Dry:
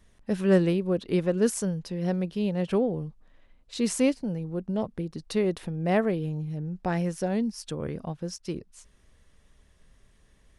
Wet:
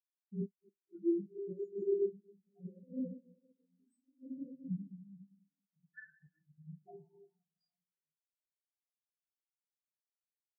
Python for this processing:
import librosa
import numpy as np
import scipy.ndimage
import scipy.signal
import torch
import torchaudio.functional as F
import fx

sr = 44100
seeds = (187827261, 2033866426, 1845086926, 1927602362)

y = fx.spec_dropout(x, sr, seeds[0], share_pct=85)
y = fx.comb_fb(y, sr, f0_hz=400.0, decay_s=0.83, harmonics='all', damping=0.0, mix_pct=90)
y = fx.env_phaser(y, sr, low_hz=240.0, high_hz=2700.0, full_db=-44.0)
y = fx.peak_eq(y, sr, hz=200.0, db=-5.5, octaves=2.8)
y = fx.room_shoebox(y, sr, seeds[1], volume_m3=160.0, walls='hard', distance_m=0.87)
y = fx.dynamic_eq(y, sr, hz=650.0, q=3.7, threshold_db=-57.0, ratio=4.0, max_db=4)
y = fx.over_compress(y, sr, threshold_db=-48.0, ratio=-0.5)
y = fx.room_flutter(y, sr, wall_m=8.6, rt60_s=0.31)
y = fx.formant_shift(y, sr, semitones=-2)
y = fx.highpass(y, sr, hz=97.0, slope=6)
y = fx.spectral_expand(y, sr, expansion=4.0)
y = y * librosa.db_to_amplitude(13.0)